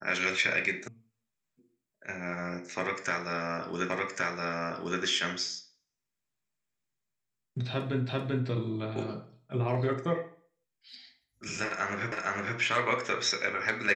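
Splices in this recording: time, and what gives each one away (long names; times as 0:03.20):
0:00.88: cut off before it has died away
0:03.90: the same again, the last 1.12 s
0:08.09: the same again, the last 0.39 s
0:12.12: the same again, the last 0.46 s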